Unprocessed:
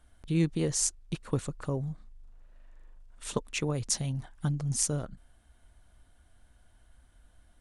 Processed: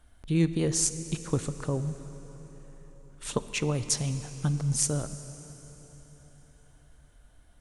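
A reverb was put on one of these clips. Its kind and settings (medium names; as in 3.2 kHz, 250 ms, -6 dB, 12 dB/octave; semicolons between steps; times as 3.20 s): plate-style reverb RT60 4.6 s, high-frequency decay 0.8×, DRR 11 dB; trim +2 dB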